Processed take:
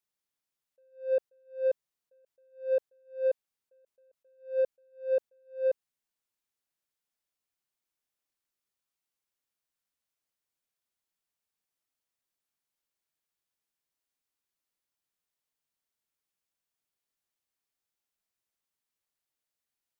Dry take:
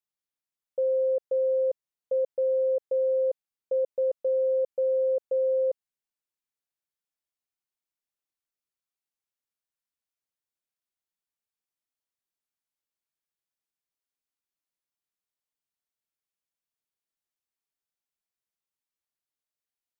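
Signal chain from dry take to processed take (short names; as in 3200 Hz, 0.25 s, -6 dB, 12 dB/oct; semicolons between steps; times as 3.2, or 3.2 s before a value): in parallel at -5 dB: soft clip -31 dBFS, distortion -12 dB; on the sum: attack slew limiter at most 180 dB/s; gain -1 dB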